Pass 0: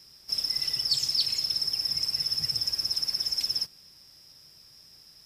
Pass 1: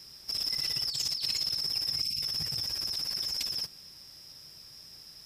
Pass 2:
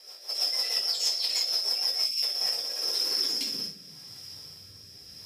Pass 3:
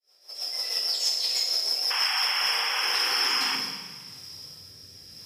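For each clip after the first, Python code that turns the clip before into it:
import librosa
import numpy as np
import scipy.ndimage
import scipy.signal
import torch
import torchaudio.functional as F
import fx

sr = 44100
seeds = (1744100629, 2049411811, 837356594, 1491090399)

y1 = fx.spec_box(x, sr, start_s=2.02, length_s=0.2, low_hz=300.0, high_hz=2100.0, gain_db=-22)
y1 = fx.over_compress(y1, sr, threshold_db=-32.0, ratio=-1.0)
y2 = fx.rev_gated(y1, sr, seeds[0], gate_ms=130, shape='falling', drr_db=-5.5)
y2 = fx.rotary_switch(y2, sr, hz=6.3, then_hz=0.85, switch_at_s=1.91)
y2 = fx.filter_sweep_highpass(y2, sr, from_hz=600.0, to_hz=77.0, start_s=2.68, end_s=4.53, q=3.0)
y3 = fx.fade_in_head(y2, sr, length_s=0.83)
y3 = fx.spec_paint(y3, sr, seeds[1], shape='noise', start_s=1.9, length_s=1.66, low_hz=720.0, high_hz=3400.0, level_db=-31.0)
y3 = fx.rev_schroeder(y3, sr, rt60_s=1.5, comb_ms=30, drr_db=4.5)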